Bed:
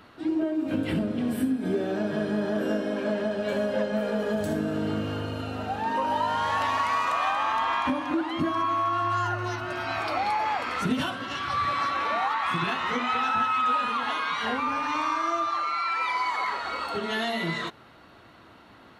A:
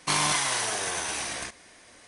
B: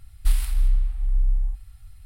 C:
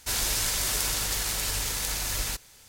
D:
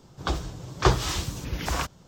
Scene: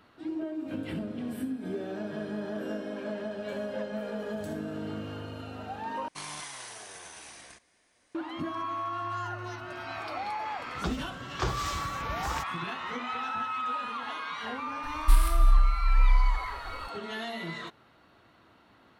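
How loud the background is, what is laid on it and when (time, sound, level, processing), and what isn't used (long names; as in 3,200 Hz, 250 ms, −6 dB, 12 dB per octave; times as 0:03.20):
bed −8 dB
0:06.08: overwrite with A −15.5 dB
0:10.57: mix in D −16 dB + boost into a limiter +8.5 dB
0:14.83: mix in B −0.5 dB
not used: C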